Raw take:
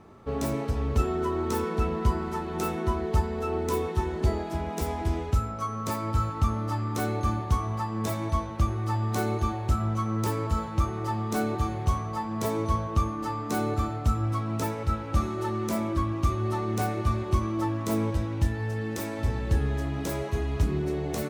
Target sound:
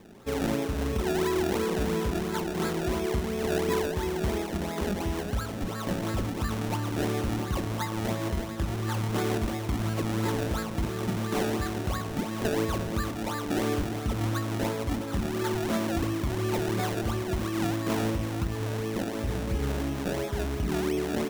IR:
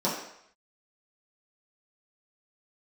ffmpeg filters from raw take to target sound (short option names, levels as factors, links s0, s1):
-filter_complex "[0:a]acrusher=samples=29:mix=1:aa=0.000001:lfo=1:lforange=29:lforate=2.9,alimiter=limit=0.106:level=0:latency=1:release=56,asplit=2[s0][s1];[1:a]atrim=start_sample=2205,lowshelf=f=380:g=10[s2];[s1][s2]afir=irnorm=-1:irlink=0,volume=0.0631[s3];[s0][s3]amix=inputs=2:normalize=0,volume=0.891"